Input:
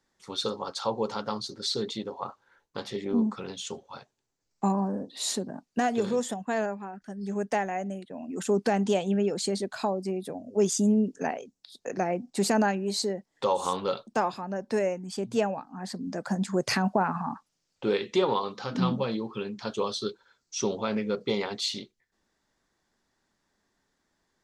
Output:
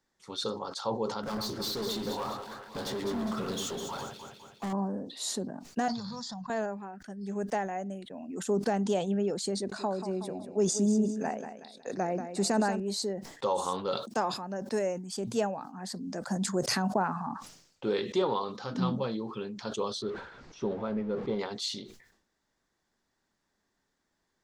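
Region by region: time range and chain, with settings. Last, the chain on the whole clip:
1.23–4.73 compressor 1.5:1, threshold -56 dBFS + sample leveller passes 5 + echo with dull and thin repeats by turns 0.102 s, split 2500 Hz, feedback 71%, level -4 dB
5.88–6.5 EQ curve 180 Hz 0 dB, 390 Hz -28 dB, 990 Hz -1 dB, 2900 Hz -16 dB, 4600 Hz +13 dB, 10000 Hz -29 dB + fast leveller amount 70%
9.53–12.8 LPF 9900 Hz 24 dB/oct + notch 3200 Hz, Q 9.3 + feedback echo 0.185 s, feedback 34%, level -10 dB
13.92–17.27 HPF 97 Hz + high shelf 3900 Hz +6.5 dB
20.02–21.39 zero-crossing step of -35 dBFS + tape spacing loss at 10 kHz 37 dB
whole clip: dynamic EQ 2400 Hz, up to -6 dB, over -51 dBFS, Q 2.1; sustainer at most 82 dB/s; gain -3.5 dB

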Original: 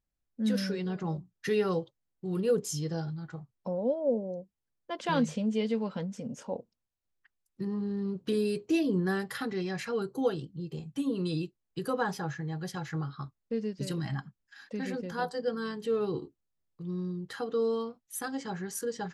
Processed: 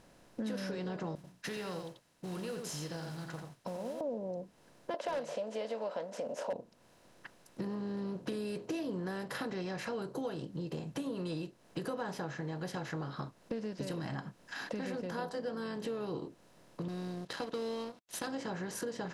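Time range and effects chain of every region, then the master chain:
1.15–4.01 passive tone stack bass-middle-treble 5-5-5 + echo 87 ms -9 dB + modulation noise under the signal 20 dB
4.94–6.53 resonant high-pass 600 Hz, resonance Q 6.1 + hard clip -17.5 dBFS
16.88–18.27 G.711 law mismatch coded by A + bell 4100 Hz +11.5 dB 1.5 oct + upward expander, over -49 dBFS
whole clip: per-bin compression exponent 0.6; high shelf 9500 Hz -6.5 dB; compressor 4:1, threshold -39 dBFS; gain +1.5 dB

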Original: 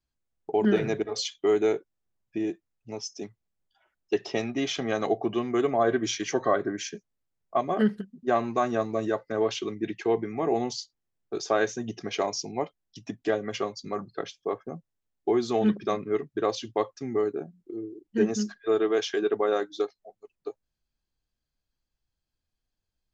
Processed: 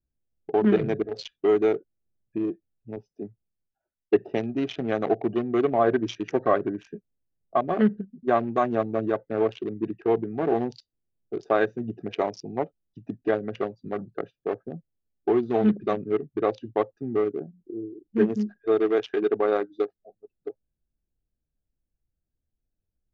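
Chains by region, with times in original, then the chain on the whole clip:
2.96–4.29 LPF 5200 Hz + high shelf 2300 Hz -5 dB + three-band expander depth 40%
whole clip: Wiener smoothing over 41 samples; LPF 3200 Hz 12 dB/oct; gain +3 dB

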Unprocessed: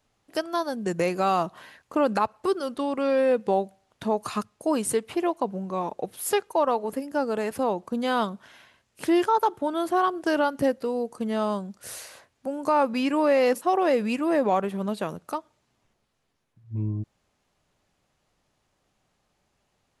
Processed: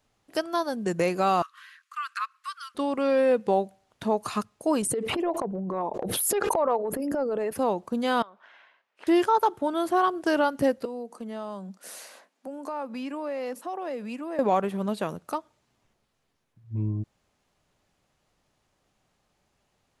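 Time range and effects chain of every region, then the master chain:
1.42–2.75 steep high-pass 1100 Hz 96 dB/oct + high shelf 5200 Hz -5.5 dB
4.82–7.58 formant sharpening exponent 1.5 + transient shaper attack -12 dB, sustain +1 dB + backwards sustainer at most 21 dB/s
8.22–9.07 compressor 12:1, threshold -36 dBFS + BPF 650–2400 Hz
10.85–14.39 rippled Chebyshev high-pass 180 Hz, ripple 3 dB + compressor 2:1, threshold -38 dBFS
whole clip: dry

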